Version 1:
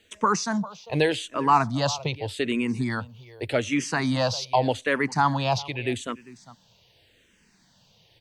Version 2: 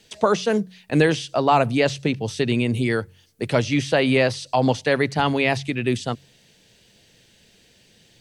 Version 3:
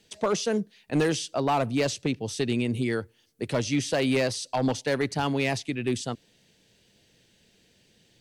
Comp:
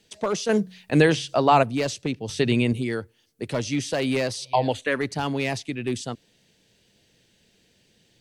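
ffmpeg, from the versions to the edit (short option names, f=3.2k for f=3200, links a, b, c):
-filter_complex "[1:a]asplit=2[a][b];[2:a]asplit=4[c][d][e][f];[c]atrim=end=0.492[g];[a]atrim=start=0.488:end=1.632[h];[d]atrim=start=1.628:end=2.292[i];[b]atrim=start=2.288:end=2.732[j];[e]atrim=start=2.728:end=4.53[k];[0:a]atrim=start=4.37:end=5.05[l];[f]atrim=start=4.89[m];[g][h]acrossfade=d=0.004:c1=hsin:c2=hsin[n];[n][i]acrossfade=d=0.004:c1=hsin:c2=hsin[o];[o][j]acrossfade=d=0.004:c1=hsin:c2=hsin[p];[p][k]acrossfade=d=0.004:c1=hsin:c2=hsin[q];[q][l]acrossfade=d=0.16:c1=tri:c2=tri[r];[r][m]acrossfade=d=0.16:c1=tri:c2=tri"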